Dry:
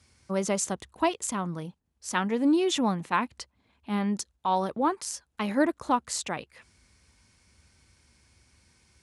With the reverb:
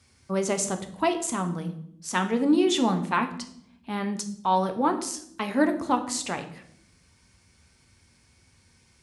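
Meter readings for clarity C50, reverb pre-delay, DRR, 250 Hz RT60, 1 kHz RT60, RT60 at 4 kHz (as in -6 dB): 11.5 dB, 3 ms, 6.0 dB, 1.1 s, 0.60 s, 0.55 s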